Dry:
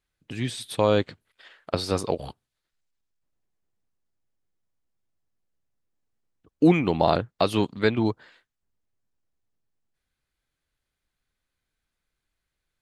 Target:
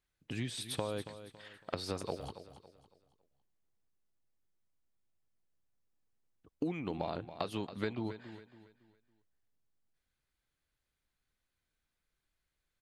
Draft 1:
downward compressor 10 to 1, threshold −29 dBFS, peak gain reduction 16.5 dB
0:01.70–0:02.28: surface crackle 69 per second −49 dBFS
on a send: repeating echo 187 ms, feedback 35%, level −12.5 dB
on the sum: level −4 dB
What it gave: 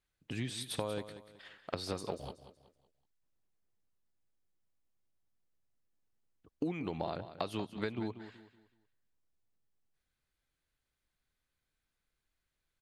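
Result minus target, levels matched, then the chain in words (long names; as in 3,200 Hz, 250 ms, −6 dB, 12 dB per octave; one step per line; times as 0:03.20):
echo 91 ms early
downward compressor 10 to 1, threshold −29 dBFS, peak gain reduction 16.5 dB
0:01.70–0:02.28: surface crackle 69 per second −49 dBFS
on a send: repeating echo 278 ms, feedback 35%, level −12.5 dB
on the sum: level −4 dB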